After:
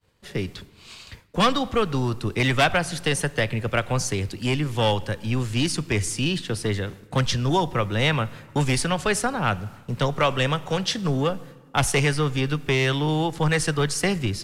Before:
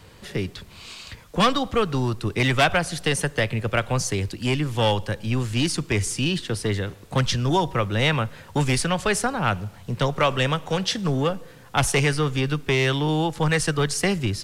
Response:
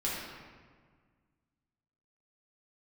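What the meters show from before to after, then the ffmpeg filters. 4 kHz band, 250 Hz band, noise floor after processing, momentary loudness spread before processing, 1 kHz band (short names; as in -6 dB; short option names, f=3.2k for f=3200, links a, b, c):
-0.5 dB, -0.5 dB, -50 dBFS, 8 LU, -0.5 dB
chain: -filter_complex "[0:a]agate=range=-33dB:threshold=-36dB:ratio=3:detection=peak,asplit=2[a][b];[1:a]atrim=start_sample=2205[c];[b][c]afir=irnorm=-1:irlink=0,volume=-24.5dB[d];[a][d]amix=inputs=2:normalize=0,volume=-1dB"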